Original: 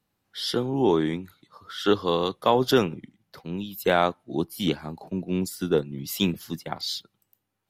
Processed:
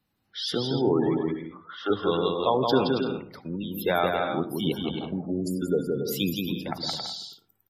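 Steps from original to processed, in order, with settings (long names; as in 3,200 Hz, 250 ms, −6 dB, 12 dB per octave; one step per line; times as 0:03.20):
spectral magnitudes quantised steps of 15 dB
0:01.18–0:01.90: resonant band-pass 930 Hz, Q 0.66
in parallel at −1.5 dB: downward compressor, threshold −31 dBFS, peak gain reduction 15.5 dB
on the sum: bouncing-ball delay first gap 170 ms, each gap 0.6×, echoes 5
gate on every frequency bin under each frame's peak −25 dB strong
on a send at −17 dB: convolution reverb RT60 0.55 s, pre-delay 68 ms
on the sum: level −4.5 dB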